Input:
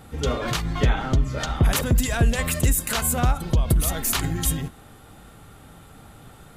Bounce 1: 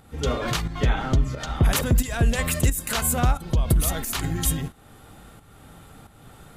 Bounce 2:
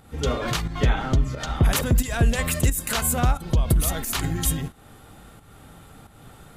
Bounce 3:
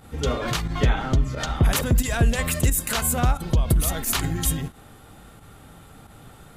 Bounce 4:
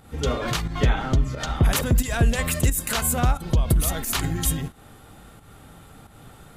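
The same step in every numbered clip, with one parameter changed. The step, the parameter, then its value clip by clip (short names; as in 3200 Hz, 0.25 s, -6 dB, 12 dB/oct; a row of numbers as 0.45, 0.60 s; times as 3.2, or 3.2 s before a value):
pump, release: 429, 281, 67, 179 ms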